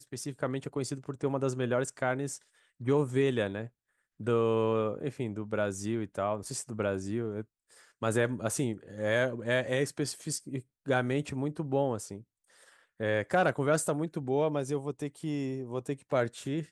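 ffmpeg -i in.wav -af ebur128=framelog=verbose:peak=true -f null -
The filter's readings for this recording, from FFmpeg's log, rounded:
Integrated loudness:
  I:         -31.8 LUFS
  Threshold: -42.2 LUFS
Loudness range:
  LRA:         2.5 LU
  Threshold: -52.0 LUFS
  LRA low:   -33.6 LUFS
  LRA high:  -31.1 LUFS
True peak:
  Peak:      -14.1 dBFS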